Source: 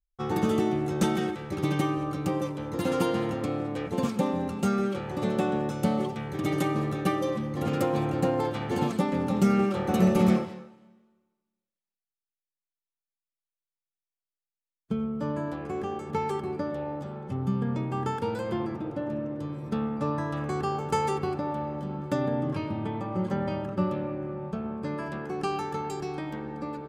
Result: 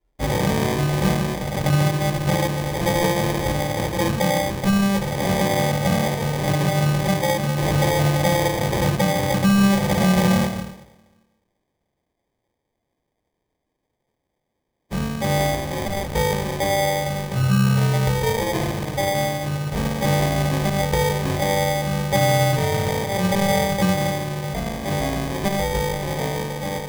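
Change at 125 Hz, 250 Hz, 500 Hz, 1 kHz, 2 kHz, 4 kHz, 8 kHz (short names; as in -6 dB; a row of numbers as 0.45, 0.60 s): +11.0, +5.0, +7.5, +8.0, +13.5, +15.5, +16.5 dB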